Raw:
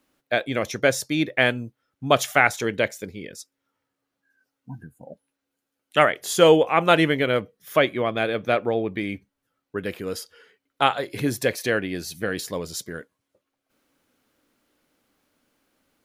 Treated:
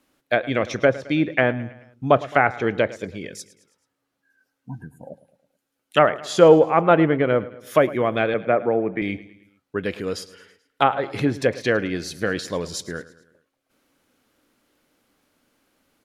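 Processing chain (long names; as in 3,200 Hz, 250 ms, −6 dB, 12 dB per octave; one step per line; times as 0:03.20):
treble cut that deepens with the level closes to 1,300 Hz, closed at −17 dBFS
0:08.34–0:09.02: Chebyshev band-pass filter 130–2,200 Hz, order 3
on a send: repeating echo 108 ms, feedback 51%, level −18 dB
on the sum: level +3 dB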